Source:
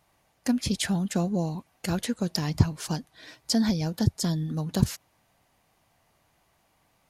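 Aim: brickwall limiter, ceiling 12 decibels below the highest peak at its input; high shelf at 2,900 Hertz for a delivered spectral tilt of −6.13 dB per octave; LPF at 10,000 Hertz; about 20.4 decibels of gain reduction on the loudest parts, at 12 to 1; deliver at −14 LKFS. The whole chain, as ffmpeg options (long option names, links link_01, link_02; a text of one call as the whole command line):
ffmpeg -i in.wav -af "lowpass=10000,highshelf=frequency=2900:gain=-9,acompressor=threshold=-36dB:ratio=12,volume=29.5dB,alimiter=limit=-3.5dB:level=0:latency=1" out.wav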